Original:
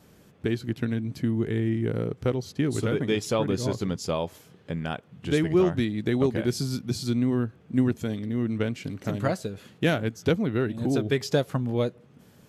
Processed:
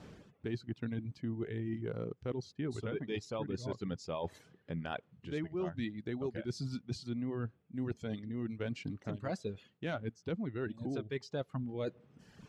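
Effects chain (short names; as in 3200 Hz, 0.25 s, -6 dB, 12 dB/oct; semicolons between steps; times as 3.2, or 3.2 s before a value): reverb removal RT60 1 s; reverse; compressor 6:1, threshold -40 dBFS, peak gain reduction 21 dB; reverse; air absorption 100 m; gain +4 dB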